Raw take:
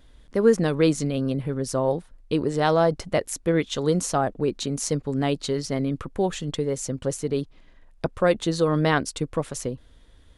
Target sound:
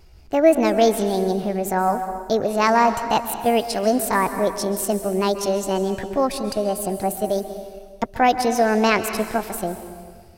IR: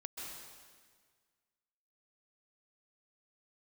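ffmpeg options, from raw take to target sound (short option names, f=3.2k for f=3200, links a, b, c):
-filter_complex "[0:a]asetrate=62367,aresample=44100,atempo=0.707107,asplit=2[a][b];[1:a]atrim=start_sample=2205[c];[b][c]afir=irnorm=-1:irlink=0,volume=-2dB[d];[a][d]amix=inputs=2:normalize=0"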